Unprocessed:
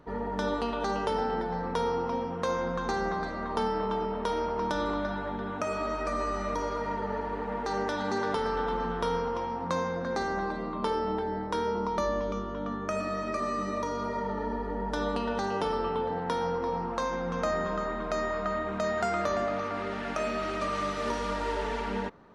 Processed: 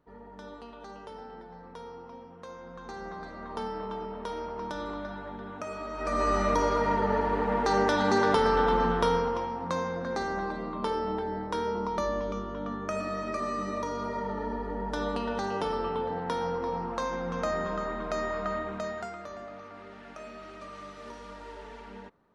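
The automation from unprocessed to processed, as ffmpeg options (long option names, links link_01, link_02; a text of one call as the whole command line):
ffmpeg -i in.wav -af "volume=6dB,afade=type=in:start_time=2.62:duration=0.96:silence=0.354813,afade=type=in:start_time=5.93:duration=0.4:silence=0.251189,afade=type=out:start_time=8.85:duration=0.68:silence=0.446684,afade=type=out:start_time=18.54:duration=0.63:silence=0.251189" out.wav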